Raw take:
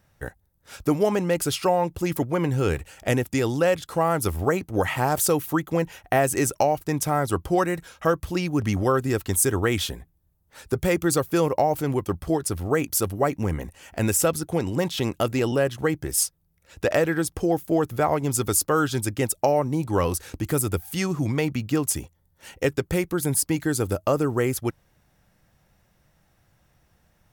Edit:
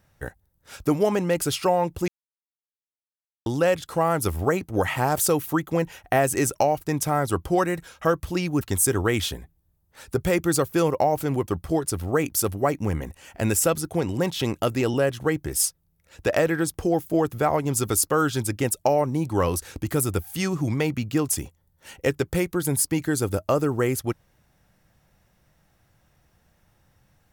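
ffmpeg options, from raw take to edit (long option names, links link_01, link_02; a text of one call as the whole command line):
ffmpeg -i in.wav -filter_complex "[0:a]asplit=4[link_01][link_02][link_03][link_04];[link_01]atrim=end=2.08,asetpts=PTS-STARTPTS,afade=type=out:start_time=2.076:duration=0.004:curve=hsin[link_05];[link_02]atrim=start=2.08:end=3.46,asetpts=PTS-STARTPTS,volume=0[link_06];[link_03]atrim=start=3.46:end=8.612,asetpts=PTS-STARTPTS,afade=type=in:duration=0.004:curve=hsin[link_07];[link_04]atrim=start=9.188[link_08];[link_05][link_06][link_07]concat=n=3:v=0:a=1[link_09];[link_09][link_08]acrossfade=duration=0.004:curve1=hsin:curve2=hsin" out.wav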